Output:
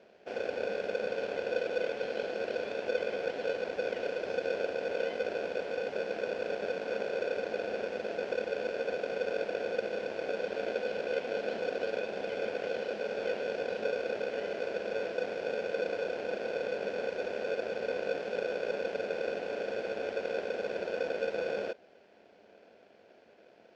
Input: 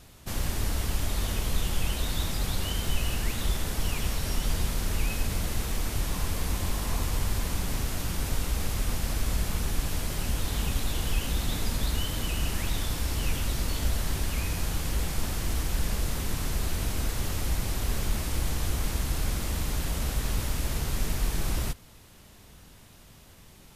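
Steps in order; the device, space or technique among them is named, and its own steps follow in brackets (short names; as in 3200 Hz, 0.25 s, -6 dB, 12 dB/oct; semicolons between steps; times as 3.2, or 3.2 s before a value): ring modulator pedal into a guitar cabinet (polarity switched at an audio rate 500 Hz; speaker cabinet 100–4200 Hz, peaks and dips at 130 Hz -7 dB, 210 Hz +8 dB, 380 Hz +3 dB, 690 Hz +7 dB, 1200 Hz -7 dB, 3700 Hz -8 dB); gain -8.5 dB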